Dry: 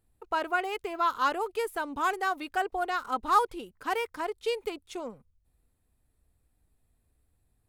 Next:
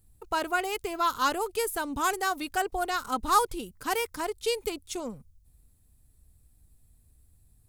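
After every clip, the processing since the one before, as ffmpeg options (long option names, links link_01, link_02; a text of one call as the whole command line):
ffmpeg -i in.wav -af "bass=frequency=250:gain=11,treble=frequency=4000:gain=13" out.wav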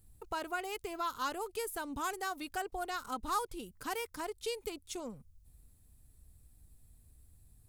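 ffmpeg -i in.wav -af "acompressor=threshold=-51dB:ratio=1.5" out.wav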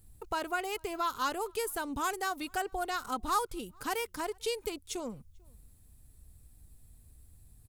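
ffmpeg -i in.wav -filter_complex "[0:a]asplit=2[link_01][link_02];[link_02]adelay=443.1,volume=-30dB,highshelf=frequency=4000:gain=-9.97[link_03];[link_01][link_03]amix=inputs=2:normalize=0,volume=4dB" out.wav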